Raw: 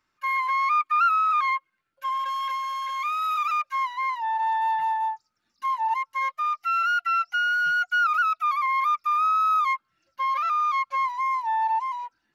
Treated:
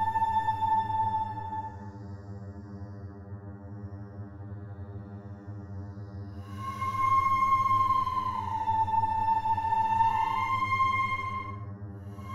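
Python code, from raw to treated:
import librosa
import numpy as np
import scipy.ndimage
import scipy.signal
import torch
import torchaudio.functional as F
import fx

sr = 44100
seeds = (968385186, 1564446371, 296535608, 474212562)

y = np.where(x < 0.0, 10.0 ** (-3.0 / 20.0) * x, x)
y = fx.dmg_buzz(y, sr, base_hz=100.0, harmonics=19, level_db=-41.0, tilt_db=-8, odd_only=False)
y = fx.paulstretch(y, sr, seeds[0], factor=11.0, window_s=0.1, from_s=5.01)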